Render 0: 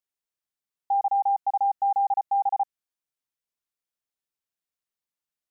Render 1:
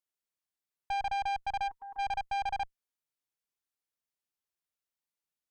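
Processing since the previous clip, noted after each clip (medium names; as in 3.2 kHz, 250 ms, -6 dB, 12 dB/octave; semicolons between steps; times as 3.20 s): time-frequency box 1.68–1.99 s, 470–940 Hz -19 dB; valve stage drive 30 dB, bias 0.6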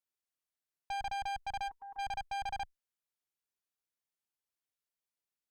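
one-sided clip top -38 dBFS, bottom -29 dBFS; trim -3 dB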